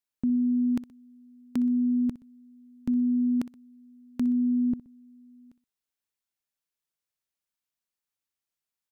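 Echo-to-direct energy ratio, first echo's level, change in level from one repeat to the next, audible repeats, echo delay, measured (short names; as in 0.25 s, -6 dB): -16.0 dB, -16.5 dB, -8.0 dB, 2, 62 ms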